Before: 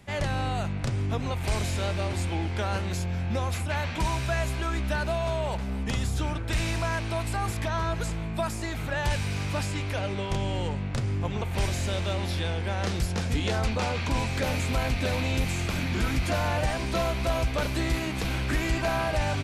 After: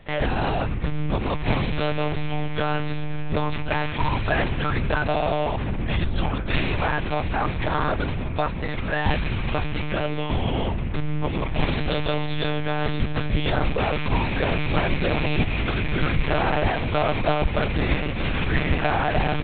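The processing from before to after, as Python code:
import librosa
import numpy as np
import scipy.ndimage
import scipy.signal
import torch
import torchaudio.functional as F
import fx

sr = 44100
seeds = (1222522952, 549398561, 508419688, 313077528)

y = fx.lpc_monotone(x, sr, seeds[0], pitch_hz=150.0, order=10)
y = y * librosa.db_to_amplitude(5.0)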